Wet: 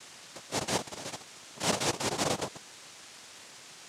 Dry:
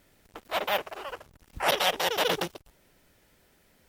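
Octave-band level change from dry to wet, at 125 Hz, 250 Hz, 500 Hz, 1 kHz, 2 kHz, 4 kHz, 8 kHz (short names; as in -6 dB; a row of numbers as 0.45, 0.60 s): +6.0, +4.0, -5.0, -5.5, -7.0, -5.0, +5.5 dB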